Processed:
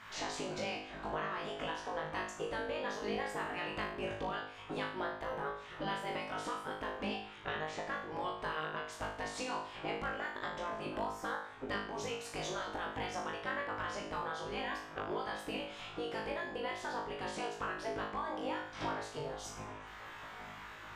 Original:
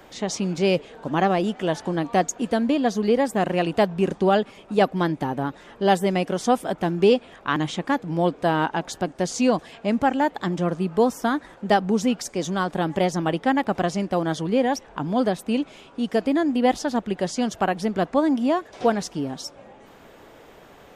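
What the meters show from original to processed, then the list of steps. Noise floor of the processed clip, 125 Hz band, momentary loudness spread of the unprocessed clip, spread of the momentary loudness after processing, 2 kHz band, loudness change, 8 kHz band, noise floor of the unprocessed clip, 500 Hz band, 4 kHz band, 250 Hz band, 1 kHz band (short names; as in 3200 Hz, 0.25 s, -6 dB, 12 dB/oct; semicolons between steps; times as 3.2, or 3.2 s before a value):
-50 dBFS, -20.5 dB, 6 LU, 4 LU, -9.0 dB, -16.5 dB, -15.0 dB, -49 dBFS, -17.5 dB, -10.5 dB, -22.5 dB, -14.0 dB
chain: LPF 1800 Hz 6 dB/oct; spectral gate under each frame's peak -10 dB weak; compressor 6:1, threshold -44 dBFS, peak gain reduction 19.5 dB; flutter echo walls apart 3.3 m, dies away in 0.57 s; gain +4 dB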